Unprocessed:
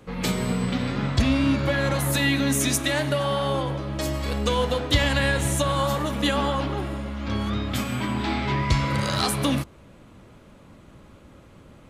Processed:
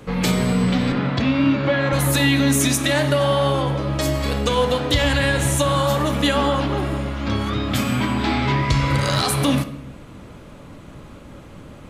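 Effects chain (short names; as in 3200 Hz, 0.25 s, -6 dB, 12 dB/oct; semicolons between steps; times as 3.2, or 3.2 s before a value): compressor 1.5:1, threshold -30 dBFS, peak gain reduction 6 dB; 0.92–1.93 BPF 140–3500 Hz; shoebox room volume 320 m³, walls mixed, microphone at 0.36 m; maximiser +14 dB; gain -6 dB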